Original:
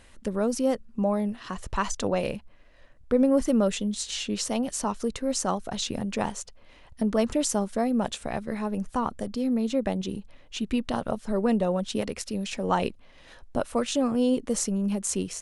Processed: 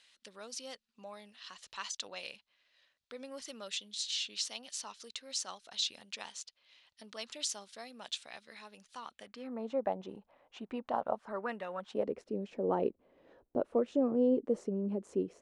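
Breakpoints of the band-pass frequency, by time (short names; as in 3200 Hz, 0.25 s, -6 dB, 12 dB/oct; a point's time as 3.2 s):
band-pass, Q 1.8
9.08 s 4000 Hz
9.63 s 800 Hz
11.11 s 800 Hz
11.69 s 2100 Hz
12.08 s 400 Hz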